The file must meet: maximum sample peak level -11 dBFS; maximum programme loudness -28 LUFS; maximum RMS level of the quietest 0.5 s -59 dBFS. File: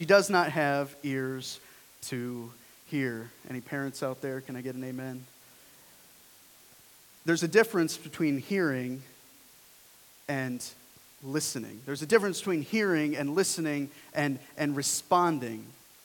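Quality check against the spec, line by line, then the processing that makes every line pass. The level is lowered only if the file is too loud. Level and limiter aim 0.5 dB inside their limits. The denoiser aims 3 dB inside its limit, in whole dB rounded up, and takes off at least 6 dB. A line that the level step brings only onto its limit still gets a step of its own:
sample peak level -8.0 dBFS: fail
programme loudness -30.0 LUFS: pass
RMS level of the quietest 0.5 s -57 dBFS: fail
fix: noise reduction 6 dB, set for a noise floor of -57 dBFS; peak limiter -11.5 dBFS

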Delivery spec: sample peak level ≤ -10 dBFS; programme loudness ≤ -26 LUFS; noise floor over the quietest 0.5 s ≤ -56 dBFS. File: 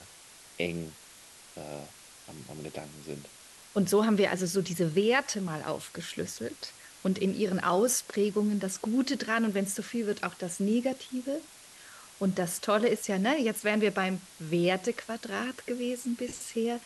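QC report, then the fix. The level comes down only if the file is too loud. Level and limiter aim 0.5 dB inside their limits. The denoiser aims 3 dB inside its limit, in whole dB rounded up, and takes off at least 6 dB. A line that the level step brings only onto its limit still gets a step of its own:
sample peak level -12.0 dBFS: pass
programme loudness -30.0 LUFS: pass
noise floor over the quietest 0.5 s -53 dBFS: fail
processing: noise reduction 6 dB, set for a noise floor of -53 dBFS

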